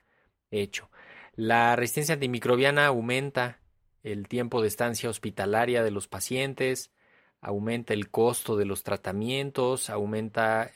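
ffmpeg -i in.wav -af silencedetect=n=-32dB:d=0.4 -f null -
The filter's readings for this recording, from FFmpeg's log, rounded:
silence_start: 0.00
silence_end: 0.53 | silence_duration: 0.53
silence_start: 0.79
silence_end: 1.38 | silence_duration: 0.60
silence_start: 3.50
silence_end: 4.06 | silence_duration: 0.56
silence_start: 6.83
silence_end: 7.45 | silence_duration: 0.62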